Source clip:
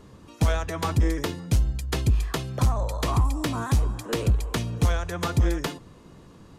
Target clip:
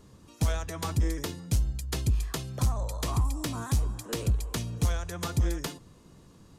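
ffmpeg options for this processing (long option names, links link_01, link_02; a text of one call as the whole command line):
ffmpeg -i in.wav -af "bass=frequency=250:gain=3,treble=frequency=4000:gain=8,volume=-7.5dB" out.wav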